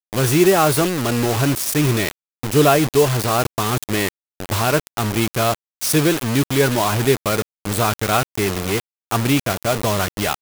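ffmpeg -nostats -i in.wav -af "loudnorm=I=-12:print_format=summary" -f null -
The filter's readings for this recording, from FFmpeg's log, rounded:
Input Integrated:    -19.1 LUFS
Input True Peak:      -2.4 dBTP
Input LRA:             3.4 LU
Input Threshold:     -29.2 LUFS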